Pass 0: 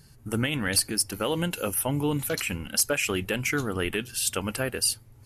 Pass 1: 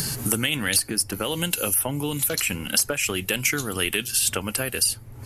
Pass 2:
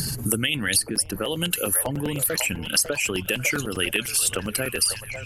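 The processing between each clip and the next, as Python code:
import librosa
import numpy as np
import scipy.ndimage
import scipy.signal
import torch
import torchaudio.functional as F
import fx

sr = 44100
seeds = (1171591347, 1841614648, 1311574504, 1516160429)

y1 = fx.high_shelf(x, sr, hz=4700.0, db=8.0)
y1 = fx.band_squash(y1, sr, depth_pct=100)
y1 = y1 * librosa.db_to_amplitude(-1.0)
y2 = fx.envelope_sharpen(y1, sr, power=1.5)
y2 = fx.echo_stepped(y2, sr, ms=548, hz=750.0, octaves=0.7, feedback_pct=70, wet_db=-5.5)
y2 = fx.buffer_crackle(y2, sr, first_s=0.95, period_s=0.1, block=256, kind='repeat')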